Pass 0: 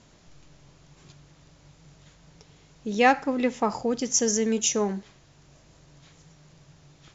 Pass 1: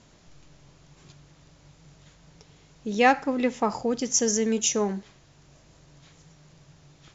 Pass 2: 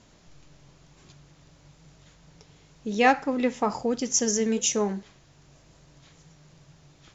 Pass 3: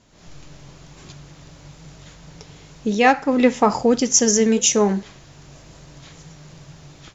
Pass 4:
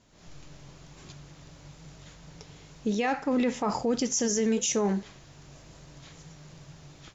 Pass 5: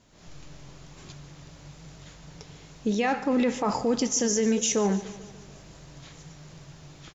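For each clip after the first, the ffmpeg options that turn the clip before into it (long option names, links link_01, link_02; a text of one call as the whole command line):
ffmpeg -i in.wav -af anull out.wav
ffmpeg -i in.wav -af "flanger=delay=2.7:depth=5.5:regen=-81:speed=1:shape=triangular,volume=4dB" out.wav
ffmpeg -i in.wav -af "dynaudnorm=framelen=120:gausssize=3:maxgain=12.5dB,volume=-1dB" out.wav
ffmpeg -i in.wav -af "alimiter=limit=-12.5dB:level=0:latency=1:release=13,volume=-6dB" out.wav
ffmpeg -i in.wav -af "aecho=1:1:146|292|438|584|730:0.158|0.0903|0.0515|0.0294|0.0167,volume=2dB" out.wav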